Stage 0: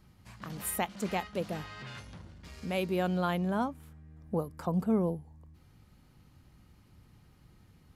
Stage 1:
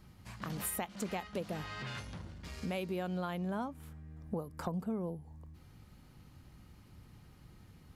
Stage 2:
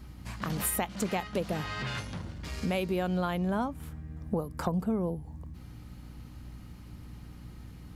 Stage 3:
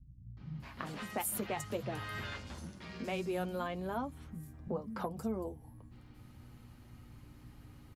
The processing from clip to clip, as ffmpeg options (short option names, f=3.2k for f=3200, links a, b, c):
-af "acompressor=threshold=-37dB:ratio=6,volume=2.5dB"
-af "aeval=exprs='val(0)+0.00224*(sin(2*PI*60*n/s)+sin(2*PI*2*60*n/s)/2+sin(2*PI*3*60*n/s)/3+sin(2*PI*4*60*n/s)/4+sin(2*PI*5*60*n/s)/5)':c=same,volume=7dB"
-filter_complex "[0:a]flanger=delay=7.3:depth=1.7:regen=-39:speed=0.27:shape=sinusoidal,acrossover=split=180|5000[a][b][c];[b]adelay=370[d];[c]adelay=600[e];[a][d][e]amix=inputs=3:normalize=0,volume=-1.5dB"